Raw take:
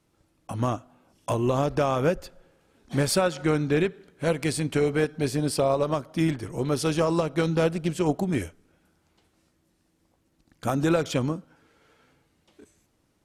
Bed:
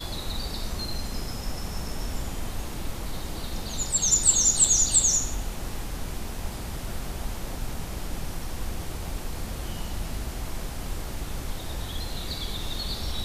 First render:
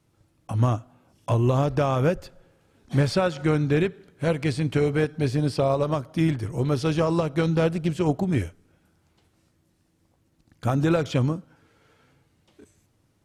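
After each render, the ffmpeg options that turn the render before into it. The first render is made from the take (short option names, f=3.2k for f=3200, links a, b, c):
-filter_complex "[0:a]acrossover=split=5300[a][b];[b]acompressor=threshold=-48dB:ratio=4:attack=1:release=60[c];[a][c]amix=inputs=2:normalize=0,equalizer=f=110:t=o:w=0.87:g=9"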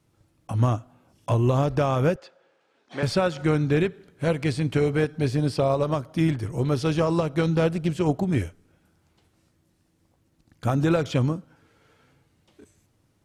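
-filter_complex "[0:a]asettb=1/sr,asplit=3[a][b][c];[a]atrim=end=2.164[d];[b]atrim=start=2.16:end=3.03,asetpts=PTS-STARTPTS,afade=t=in:d=0.004:c=qsin,afade=t=out:st=0.866:d=0.004:c=qsin,highpass=480,lowpass=4.9k[e];[c]atrim=start=3.026[f];[d][e]acrossfade=d=0.004:c1=hsin:c2=qsin[g];[g][f]acrossfade=d=0.004:c1=qsin:c2=hsin"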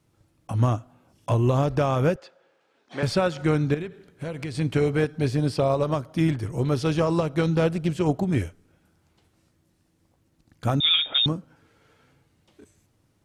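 -filter_complex "[0:a]asettb=1/sr,asplit=3[a][b][c];[a]atrim=end=3.744[d];[b]atrim=start=3.74:end=4.55,asetpts=PTS-STARTPTS,afade=t=in:d=0.004:c=qsin,afade=t=out:st=0.806:d=0.004:c=qsin,acompressor=threshold=-28dB:ratio=6:attack=3.2:release=140:knee=1:detection=peak[e];[c]atrim=start=4.546[f];[d][e]acrossfade=d=0.004:c1=hsin:c2=qsin[g];[g][f]acrossfade=d=0.004:c1=qsin:c2=hsin,asettb=1/sr,asplit=3[h][i][j];[h]atrim=end=10.804[k];[i]atrim=start=10.8:end=11.26,asetpts=PTS-STARTPTS,afade=t=in:d=0.004:c=qsin,afade=t=out:st=0.456:d=0.004:c=qsin,lowpass=f=3.2k:t=q:w=0.5098,lowpass=f=3.2k:t=q:w=0.6013,lowpass=f=3.2k:t=q:w=0.9,lowpass=f=3.2k:t=q:w=2.563,afreqshift=-3800[l];[j]atrim=start=11.256[m];[k][l]acrossfade=d=0.004:c1=hsin:c2=qsin[n];[n][m]acrossfade=d=0.004:c1=qsin:c2=hsin"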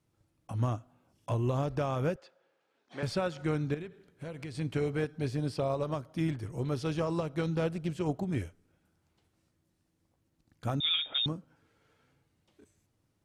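-af "volume=-9dB"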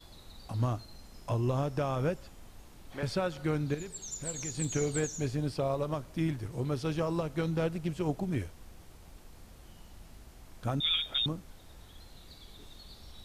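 -filter_complex "[1:a]volume=-19.5dB[a];[0:a][a]amix=inputs=2:normalize=0"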